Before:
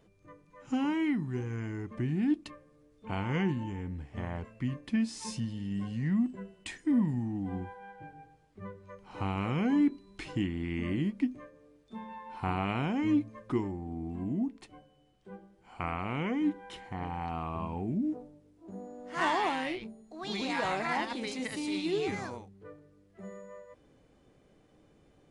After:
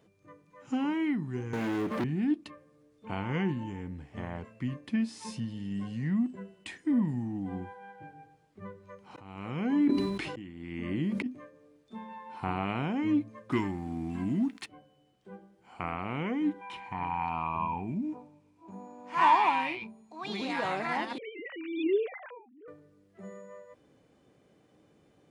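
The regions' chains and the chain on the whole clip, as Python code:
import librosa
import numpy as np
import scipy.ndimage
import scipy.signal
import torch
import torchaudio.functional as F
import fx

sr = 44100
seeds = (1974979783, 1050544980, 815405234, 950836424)

y = fx.chain(x, sr, fx.highpass(hz=230.0, slope=12),
    fx.leveller(passes=5), at=(1.53, 2.04))
y = fx.chain(y, sr, fx.auto_swell(attack_ms=599.0),
    fx.sustainer(db_per_s=34.0), at=(9.06, 11.26))
y = fx.chain(y, sr, fx.curve_eq(hz=(280.0, 490.0, 1500.0), db=(0, -7, 10)),
    fx.leveller(passes=1), at=(13.52, 14.66))
y = fx.chain(y, sr, fx.lowpass(hz=9700.0, slope=12),
    fx.peak_eq(hz=470.0, db=-6.0, octaves=1.4),
    fx.small_body(hz=(960.0, 2400.0), ring_ms=25, db=16), at=(16.61, 20.26))
y = fx.chain(y, sr, fx.sine_speech(),
    fx.pre_swell(db_per_s=82.0), at=(21.18, 22.68))
y = scipy.signal.sosfilt(scipy.signal.butter(2, 100.0, 'highpass', fs=sr, output='sos'), y)
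y = fx.dynamic_eq(y, sr, hz=7000.0, q=0.99, threshold_db=-57.0, ratio=4.0, max_db=-6)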